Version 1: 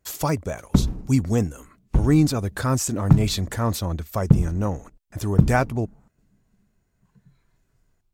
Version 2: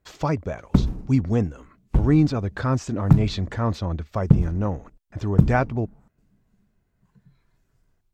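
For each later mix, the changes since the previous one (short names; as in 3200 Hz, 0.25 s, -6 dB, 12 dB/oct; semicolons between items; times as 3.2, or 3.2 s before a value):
speech: add air absorption 180 m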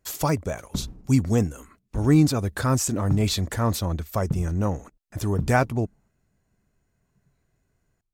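speech: remove air absorption 180 m; background -12.0 dB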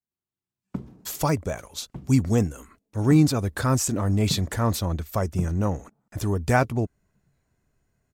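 speech: entry +1.00 s; background: add HPF 140 Hz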